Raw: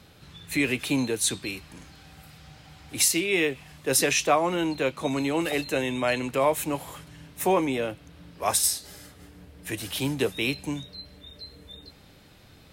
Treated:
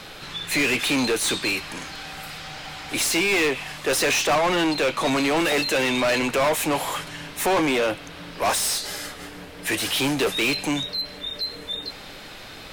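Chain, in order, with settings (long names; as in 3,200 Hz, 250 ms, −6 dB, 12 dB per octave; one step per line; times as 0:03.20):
mid-hump overdrive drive 30 dB, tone 5,100 Hz, clips at −8 dBFS
background noise brown −46 dBFS
level −5.5 dB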